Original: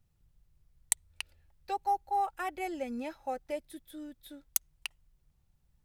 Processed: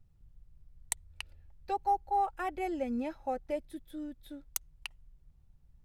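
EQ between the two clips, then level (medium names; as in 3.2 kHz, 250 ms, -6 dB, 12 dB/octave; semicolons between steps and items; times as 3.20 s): tilt EQ -2 dB/octave; 0.0 dB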